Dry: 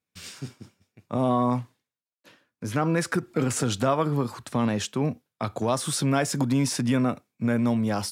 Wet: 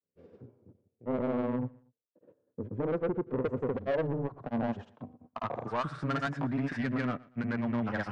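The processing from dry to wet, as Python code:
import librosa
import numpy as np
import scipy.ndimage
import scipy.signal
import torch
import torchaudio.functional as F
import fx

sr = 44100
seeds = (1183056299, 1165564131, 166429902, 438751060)

p1 = fx.filter_sweep_lowpass(x, sr, from_hz=480.0, to_hz=1800.0, start_s=3.67, end_s=6.55, q=3.3)
p2 = 10.0 ** (-19.5 / 20.0) * np.tanh(p1 / 10.0 ** (-19.5 / 20.0))
p3 = fx.granulator(p2, sr, seeds[0], grain_ms=100.0, per_s=20.0, spray_ms=100.0, spread_st=0)
p4 = p3 + fx.echo_feedback(p3, sr, ms=118, feedback_pct=33, wet_db=-23, dry=0)
y = p4 * 10.0 ** (-5.0 / 20.0)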